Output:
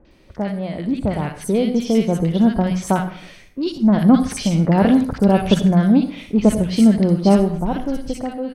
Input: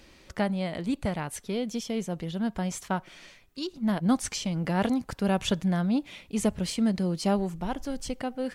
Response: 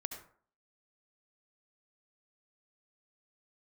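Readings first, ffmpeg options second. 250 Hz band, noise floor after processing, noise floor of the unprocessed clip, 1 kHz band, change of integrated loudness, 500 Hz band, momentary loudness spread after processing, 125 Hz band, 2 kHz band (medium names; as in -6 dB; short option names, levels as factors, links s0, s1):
+12.5 dB, -47 dBFS, -56 dBFS, +9.0 dB, +12.0 dB, +11.5 dB, 12 LU, +12.0 dB, +6.0 dB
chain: -filter_complex "[0:a]tiltshelf=f=1100:g=3.5,bandreject=f=7100:w=9.4,bandreject=f=61:t=h:w=4,bandreject=f=122:t=h:w=4,bandreject=f=183:t=h:w=4,bandreject=f=244:t=h:w=4,dynaudnorm=f=460:g=5:m=3.76,acrossover=split=1300|5700[s0][s1][s2];[s1]adelay=50[s3];[s2]adelay=110[s4];[s0][s3][s4]amix=inputs=3:normalize=0,asplit=2[s5][s6];[1:a]atrim=start_sample=2205[s7];[s6][s7]afir=irnorm=-1:irlink=0,volume=1.19[s8];[s5][s8]amix=inputs=2:normalize=0,volume=0.596"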